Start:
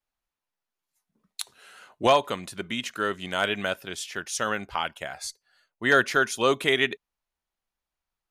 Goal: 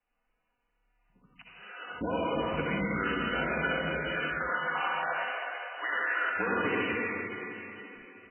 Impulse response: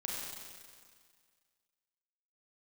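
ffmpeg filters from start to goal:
-filter_complex "[0:a]asplit=3[s0][s1][s2];[s0]afade=t=out:st=3.97:d=0.02[s3];[s1]highpass=f=630:w=0.5412,highpass=f=630:w=1.3066,afade=t=in:st=3.97:d=0.02,afade=t=out:st=6.38:d=0.02[s4];[s2]afade=t=in:st=6.38:d=0.02[s5];[s3][s4][s5]amix=inputs=3:normalize=0,afreqshift=-35,alimiter=limit=0.141:level=0:latency=1:release=476,acompressor=threshold=0.0141:ratio=8,aecho=1:1:4.1:0.45[s6];[1:a]atrim=start_sample=2205,asetrate=23814,aresample=44100[s7];[s6][s7]afir=irnorm=-1:irlink=0,volume=1.78" -ar 8000 -c:a libmp3lame -b:a 8k

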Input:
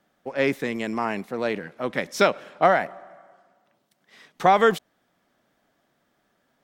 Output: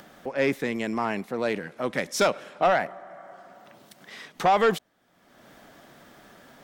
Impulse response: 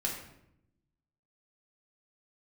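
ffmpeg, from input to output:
-filter_complex "[0:a]asettb=1/sr,asplit=3[s0][s1][s2];[s0]atrim=end=1.434[s3];[s1]atrim=start=1.43:end=2.63,asetpts=PTS-STARTPTS,afade=t=in:d=0.004:c=qsin,afade=t=out:st=1.196:d=0.004:c=qsin,equalizer=f=8800:t=o:w=1.5:g=5.5[s4];[s2]atrim=start=2.626[s5];[s3][s4]acrossfade=d=0.004:c1=hsin:c2=qsin[s6];[s6][s5]acrossfade=d=0.004:c1=qsin:c2=hsin,asplit=2[s7][s8];[s8]acompressor=mode=upward:threshold=0.0447:ratio=2.5,volume=1.19[s9];[s7][s9]amix=inputs=2:normalize=0,asoftclip=type=tanh:threshold=0.501,volume=0.447"

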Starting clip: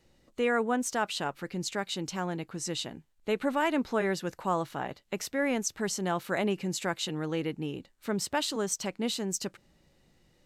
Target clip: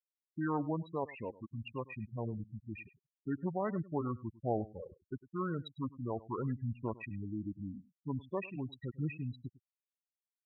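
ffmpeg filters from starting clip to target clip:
-filter_complex "[0:a]acrossover=split=5400[s0][s1];[s1]acompressor=threshold=0.00562:ratio=4:attack=1:release=60[s2];[s0][s2]amix=inputs=2:normalize=0,afftfilt=real='re*gte(hypot(re,im),0.0708)':imag='im*gte(hypot(re,im),0.0708)':win_size=1024:overlap=0.75,aphaser=in_gain=1:out_gain=1:delay=3.1:decay=0.25:speed=0.44:type=triangular,asetrate=28595,aresample=44100,atempo=1.54221,aecho=1:1:102:0.106,volume=0.473"

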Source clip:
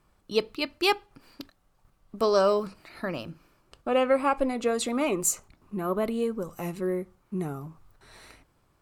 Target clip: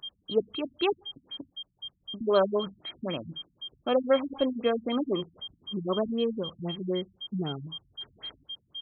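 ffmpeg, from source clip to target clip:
-af "aeval=exprs='val(0)+0.02*sin(2*PI*3200*n/s)':c=same,highpass=71,afftfilt=real='re*lt(b*sr/1024,240*pow(4300/240,0.5+0.5*sin(2*PI*3.9*pts/sr)))':imag='im*lt(b*sr/1024,240*pow(4300/240,0.5+0.5*sin(2*PI*3.9*pts/sr)))':win_size=1024:overlap=0.75"

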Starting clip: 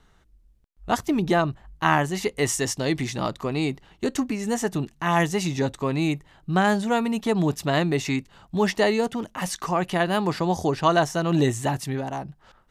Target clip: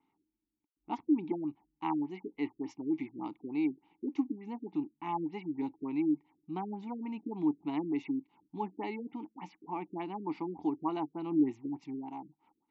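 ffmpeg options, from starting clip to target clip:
-filter_complex "[0:a]asplit=3[s0][s1][s2];[s0]bandpass=f=300:t=q:w=8,volume=1[s3];[s1]bandpass=f=870:t=q:w=8,volume=0.501[s4];[s2]bandpass=f=2240:t=q:w=8,volume=0.355[s5];[s3][s4][s5]amix=inputs=3:normalize=0,lowshelf=f=88:g=-11.5,afftfilt=real='re*lt(b*sr/1024,450*pow(7900/450,0.5+0.5*sin(2*PI*3.4*pts/sr)))':imag='im*lt(b*sr/1024,450*pow(7900/450,0.5+0.5*sin(2*PI*3.4*pts/sr)))':win_size=1024:overlap=0.75"

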